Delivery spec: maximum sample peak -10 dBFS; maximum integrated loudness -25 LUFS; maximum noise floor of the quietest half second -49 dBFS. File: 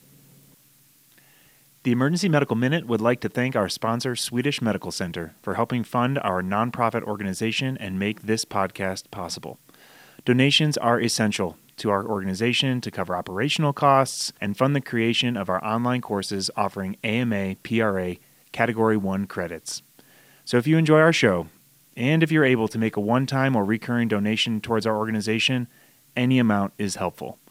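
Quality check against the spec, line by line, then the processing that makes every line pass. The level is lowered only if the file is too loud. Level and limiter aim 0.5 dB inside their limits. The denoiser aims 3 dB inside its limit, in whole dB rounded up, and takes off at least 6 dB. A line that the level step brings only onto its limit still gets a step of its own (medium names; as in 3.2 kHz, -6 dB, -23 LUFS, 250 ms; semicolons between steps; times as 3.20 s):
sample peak -3.5 dBFS: fail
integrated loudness -23.5 LUFS: fail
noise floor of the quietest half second -57 dBFS: pass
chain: trim -2 dB; peak limiter -10.5 dBFS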